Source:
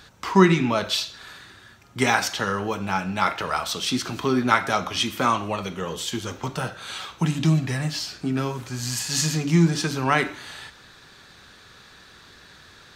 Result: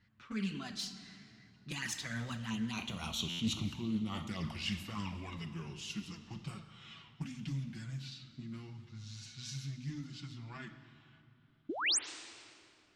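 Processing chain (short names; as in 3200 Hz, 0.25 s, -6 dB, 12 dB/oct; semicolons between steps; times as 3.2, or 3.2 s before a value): Doppler pass-by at 3.12, 52 m/s, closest 9.6 m; envelope flanger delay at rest 10.1 ms, full sweep at -32.5 dBFS; reverse; compressor 12:1, threshold -45 dBFS, peak gain reduction 19.5 dB; reverse; painted sound rise, 11.69–11.99, 270–9800 Hz -41 dBFS; EQ curve 220 Hz 0 dB, 500 Hz -17 dB, 2800 Hz -3 dB; low-pass opened by the level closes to 2100 Hz, open at -53 dBFS; on a send at -12.5 dB: reverb RT60 2.8 s, pre-delay 99 ms; on the sum: stuck buffer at 3.29, samples 512, times 8; Doppler distortion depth 0.14 ms; gain +14.5 dB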